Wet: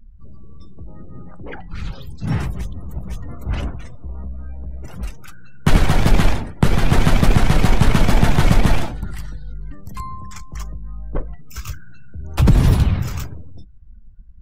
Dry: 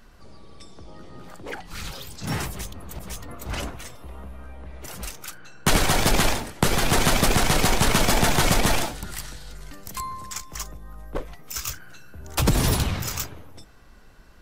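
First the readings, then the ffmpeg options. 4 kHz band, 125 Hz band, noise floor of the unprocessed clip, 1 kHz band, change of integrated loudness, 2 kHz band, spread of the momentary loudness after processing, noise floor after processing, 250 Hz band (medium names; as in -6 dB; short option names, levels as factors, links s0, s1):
-4.0 dB, +9.5 dB, -49 dBFS, 0.0 dB, +4.5 dB, -0.5 dB, 19 LU, -39 dBFS, +6.0 dB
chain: -af "afftdn=nr=27:nf=-43,bass=f=250:g=10,treble=f=4000:g=-9"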